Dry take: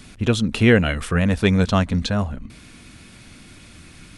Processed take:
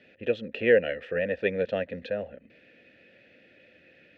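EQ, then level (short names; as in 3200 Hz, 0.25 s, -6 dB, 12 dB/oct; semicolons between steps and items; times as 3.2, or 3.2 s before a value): vowel filter e; HPF 57 Hz; air absorption 200 m; +5.5 dB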